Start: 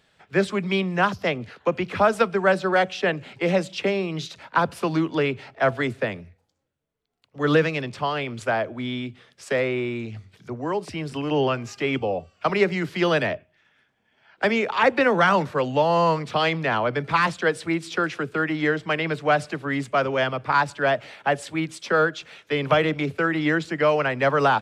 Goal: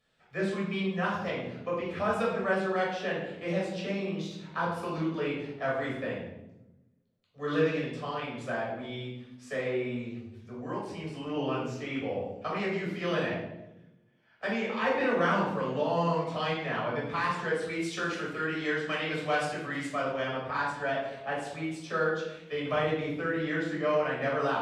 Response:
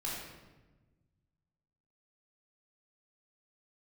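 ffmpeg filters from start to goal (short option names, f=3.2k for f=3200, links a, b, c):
-filter_complex "[0:a]asettb=1/sr,asplit=3[a][b][c];[a]atrim=end=17.624[d];[b]atrim=start=17.62:end=19.9,asetpts=PTS-STARTPTS,afade=t=in:d=0.004:c=qsin,afade=t=out:st=2.276:d=0.004:c=qsin,highshelf=f=2.5k:g=9.5[e];[c]atrim=start=19.896[f];[d][e]acrossfade=d=0.004:c1=hsin:c2=qsin[g];[g][f]acrossfade=d=0.004:c1=qsin:c2=hsin[h];[1:a]atrim=start_sample=2205,asetrate=66150,aresample=44100[i];[h][i]afir=irnorm=-1:irlink=0,volume=-8.5dB"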